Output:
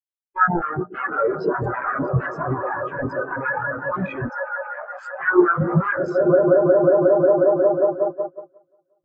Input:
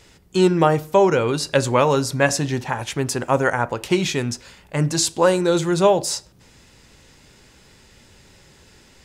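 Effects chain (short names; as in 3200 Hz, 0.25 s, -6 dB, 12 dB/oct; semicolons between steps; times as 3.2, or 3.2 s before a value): cycle switcher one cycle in 3, muted; LPF 8900 Hz 24 dB/oct; swelling echo 0.18 s, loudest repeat 5, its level -15 dB; sine folder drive 16 dB, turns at -3.5 dBFS; gate -13 dBFS, range -7 dB; bell 1500 Hz +11 dB 1.8 oct; limiter -0.5 dBFS, peak gain reduction 8.5 dB; 4.29–5.2 steep high-pass 490 Hz 36 dB/oct; spectral expander 4:1; gain -6.5 dB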